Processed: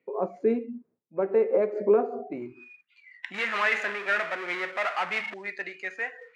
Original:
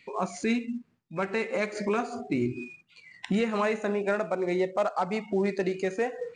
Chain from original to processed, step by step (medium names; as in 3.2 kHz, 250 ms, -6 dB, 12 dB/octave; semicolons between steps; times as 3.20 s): 3.34–5.34 s: power-law waveshaper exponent 0.5; band-pass sweep 460 Hz -> 1.9 kHz, 2.17–2.74 s; three bands expanded up and down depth 40%; trim +8 dB